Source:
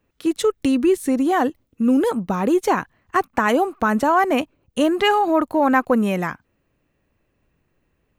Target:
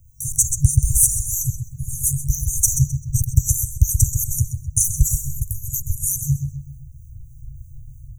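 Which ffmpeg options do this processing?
ffmpeg -i in.wav -filter_complex "[0:a]acrossover=split=710[link_01][link_02];[link_01]aeval=exprs='val(0)*(1-0.5/2+0.5/2*cos(2*PI*3.2*n/s))':channel_layout=same[link_03];[link_02]aeval=exprs='val(0)*(1-0.5/2-0.5/2*cos(2*PI*3.2*n/s))':channel_layout=same[link_04];[link_03][link_04]amix=inputs=2:normalize=0,asplit=2[link_05][link_06];[link_06]adelay=129,lowpass=frequency=4600:poles=1,volume=-7dB,asplit=2[link_07][link_08];[link_08]adelay=129,lowpass=frequency=4600:poles=1,volume=0.42,asplit=2[link_09][link_10];[link_10]adelay=129,lowpass=frequency=4600:poles=1,volume=0.42,asplit=2[link_11][link_12];[link_12]adelay=129,lowpass=frequency=4600:poles=1,volume=0.42,asplit=2[link_13][link_14];[link_14]adelay=129,lowpass=frequency=4600:poles=1,volume=0.42[link_15];[link_05][link_07][link_09][link_11][link_13][link_15]amix=inputs=6:normalize=0,acrossover=split=920[link_16][link_17];[link_16]dynaudnorm=framelen=250:gausssize=3:maxgain=9.5dB[link_18];[link_18][link_17]amix=inputs=2:normalize=0,afftfilt=real='re*(1-between(b*sr/4096,140,5800))':imag='im*(1-between(b*sr/4096,140,5800))':win_size=4096:overlap=0.75,alimiter=level_in=25.5dB:limit=-1dB:release=50:level=0:latency=1,volume=-1dB" out.wav

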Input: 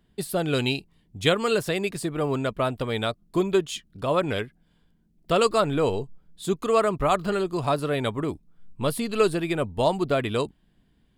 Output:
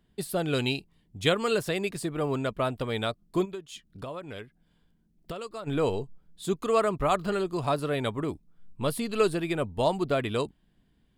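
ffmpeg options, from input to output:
ffmpeg -i in.wav -filter_complex "[0:a]asplit=3[link_01][link_02][link_03];[link_01]afade=type=out:start_time=3.44:duration=0.02[link_04];[link_02]acompressor=threshold=-33dB:ratio=6,afade=type=in:start_time=3.44:duration=0.02,afade=type=out:start_time=5.66:duration=0.02[link_05];[link_03]afade=type=in:start_time=5.66:duration=0.02[link_06];[link_04][link_05][link_06]amix=inputs=3:normalize=0,volume=-3dB" out.wav

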